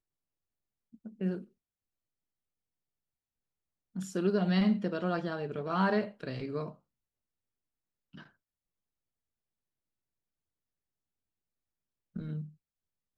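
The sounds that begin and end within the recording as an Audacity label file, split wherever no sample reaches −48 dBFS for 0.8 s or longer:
0.940000	1.440000	sound
3.960000	6.740000	sound
8.140000	8.260000	sound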